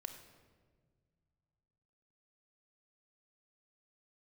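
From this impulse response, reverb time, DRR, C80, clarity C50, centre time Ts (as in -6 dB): 1.7 s, 6.5 dB, 9.5 dB, 8.0 dB, 23 ms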